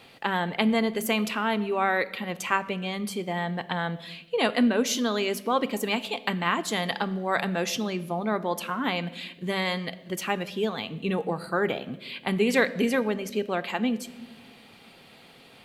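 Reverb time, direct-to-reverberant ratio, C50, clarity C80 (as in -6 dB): 1.2 s, 11.0 dB, 17.0 dB, 18.5 dB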